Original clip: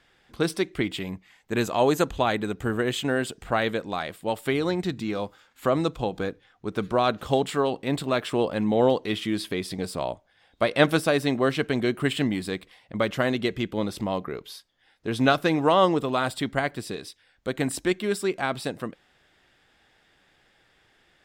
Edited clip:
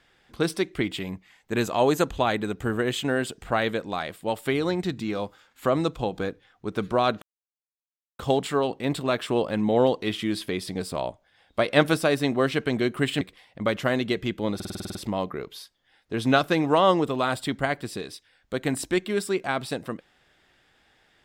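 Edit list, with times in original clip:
7.22 insert silence 0.97 s
12.24–12.55 cut
13.89 stutter 0.05 s, 9 plays

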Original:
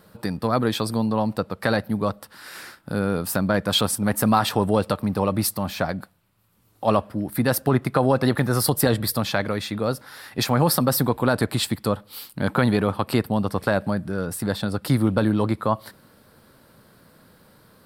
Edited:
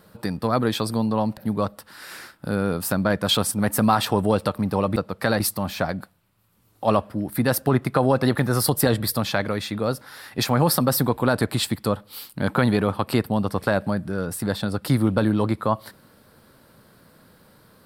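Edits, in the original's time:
1.37–1.81 move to 5.4

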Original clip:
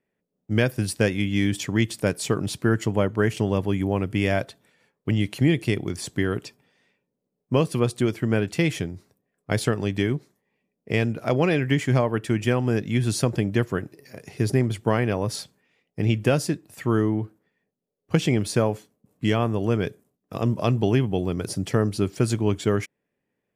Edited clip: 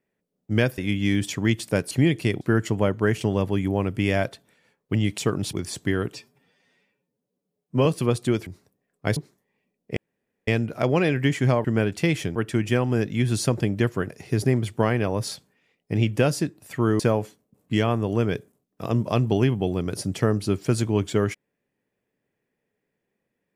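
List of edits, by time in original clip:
0.78–1.09 cut
2.22–2.57 swap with 5.34–5.84
6.44–7.59 stretch 1.5×
8.2–8.91 move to 12.11
9.61–10.14 cut
10.94 insert room tone 0.51 s
13.85–14.17 cut
17.07–18.51 cut

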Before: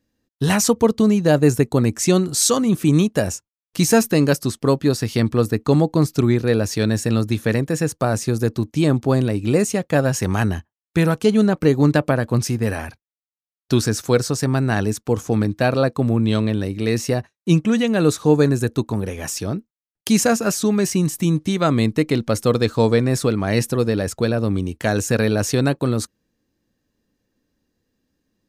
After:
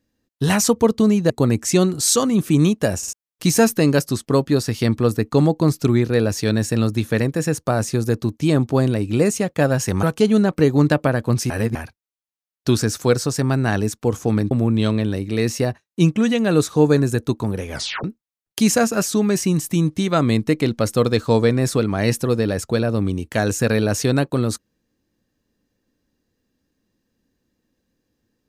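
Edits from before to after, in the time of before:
1.3–1.64 cut
3.32 stutter in place 0.05 s, 3 plays
10.37–11.07 cut
12.54–12.79 reverse
15.55–16 cut
19.21 tape stop 0.32 s

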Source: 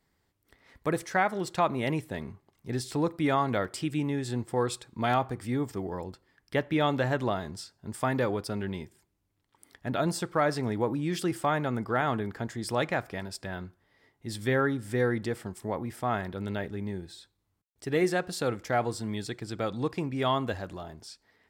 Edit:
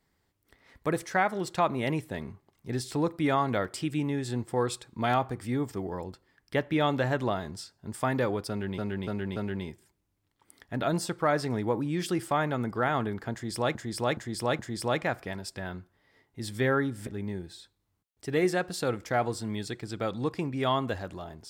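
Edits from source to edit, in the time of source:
8.49–8.78 loop, 4 plays
12.46–12.88 loop, 4 plays
14.94–16.66 cut

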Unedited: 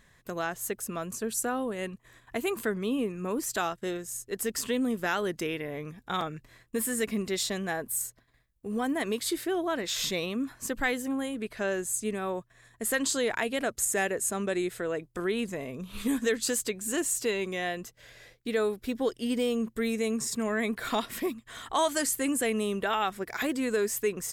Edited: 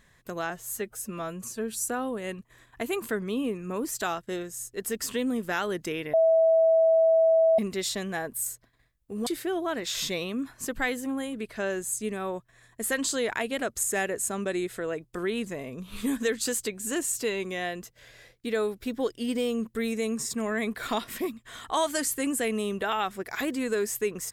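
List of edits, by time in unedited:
0.5–1.41 stretch 1.5×
5.68–7.13 bleep 651 Hz -17 dBFS
8.81–9.28 cut

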